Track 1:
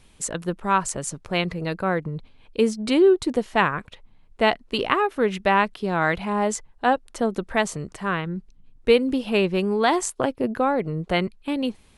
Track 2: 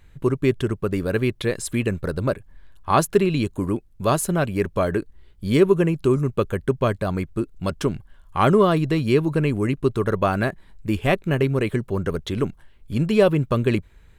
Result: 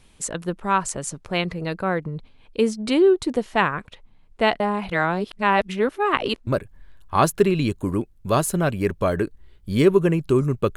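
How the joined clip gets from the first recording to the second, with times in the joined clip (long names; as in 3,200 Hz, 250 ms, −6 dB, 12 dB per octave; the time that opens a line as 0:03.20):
track 1
0:04.60–0:06.47: reverse
0:06.47: continue with track 2 from 0:02.22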